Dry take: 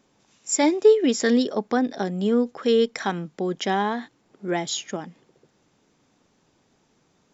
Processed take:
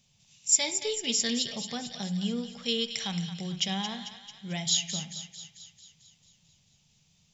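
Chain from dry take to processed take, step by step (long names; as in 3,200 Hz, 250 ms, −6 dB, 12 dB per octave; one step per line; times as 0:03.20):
drawn EQ curve 170 Hz 0 dB, 290 Hz −26 dB, 690 Hz −16 dB, 1,500 Hz −19 dB, 2,800 Hz +1 dB
feedback echo with a high-pass in the loop 222 ms, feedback 60%, high-pass 950 Hz, level −9.5 dB
convolution reverb RT60 0.70 s, pre-delay 9 ms, DRR 9.5 dB
level +2 dB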